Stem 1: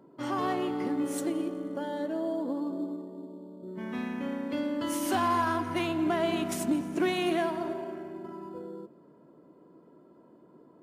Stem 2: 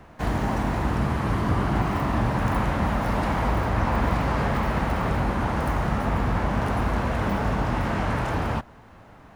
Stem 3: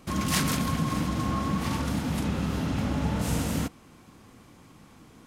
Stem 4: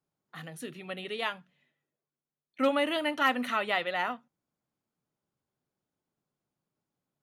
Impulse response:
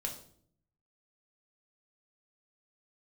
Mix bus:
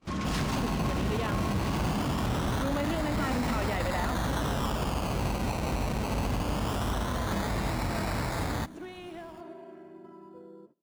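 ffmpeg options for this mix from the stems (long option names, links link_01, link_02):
-filter_complex "[0:a]alimiter=level_in=3dB:limit=-24dB:level=0:latency=1:release=405,volume=-3dB,adelay=1800,volume=-7.5dB[link_01];[1:a]acrusher=samples=20:mix=1:aa=0.000001:lfo=1:lforange=12:lforate=0.22,adelay=50,volume=-5.5dB[link_02];[2:a]lowpass=6200,asoftclip=type=hard:threshold=-26.5dB,volume=-2dB[link_03];[3:a]aemphasis=mode=reproduction:type=riaa,alimiter=limit=-22.5dB:level=0:latency=1,volume=1dB[link_04];[link_01][link_02][link_03][link_04]amix=inputs=4:normalize=0,agate=range=-20dB:threshold=-56dB:ratio=16:detection=peak,highshelf=frequency=11000:gain=-4.5,alimiter=limit=-21.5dB:level=0:latency=1:release=19"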